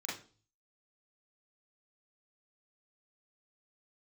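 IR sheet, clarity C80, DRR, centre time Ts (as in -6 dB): 12.0 dB, -7.5 dB, 44 ms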